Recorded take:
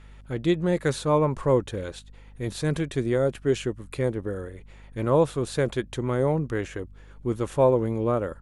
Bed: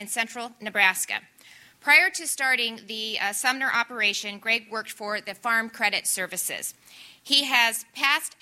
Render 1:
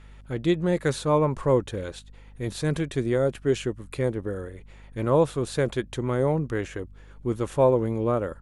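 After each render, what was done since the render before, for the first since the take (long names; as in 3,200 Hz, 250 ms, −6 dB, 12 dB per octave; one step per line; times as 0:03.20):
no processing that can be heard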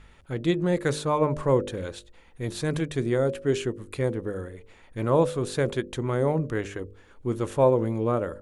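hum removal 50 Hz, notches 12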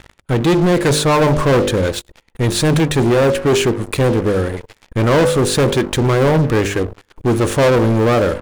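leveller curve on the samples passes 5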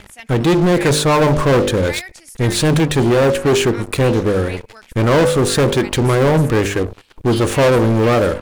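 mix in bed −11.5 dB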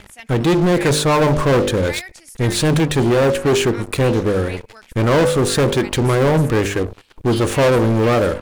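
level −1.5 dB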